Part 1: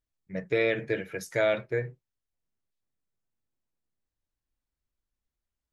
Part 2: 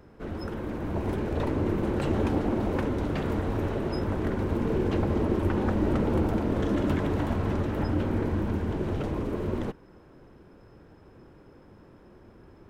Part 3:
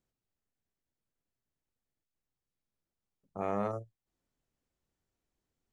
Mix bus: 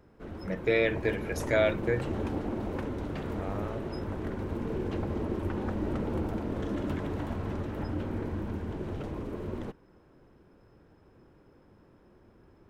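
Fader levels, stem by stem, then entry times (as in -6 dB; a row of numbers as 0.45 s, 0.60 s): 0.0 dB, -6.5 dB, -6.0 dB; 0.15 s, 0.00 s, 0.00 s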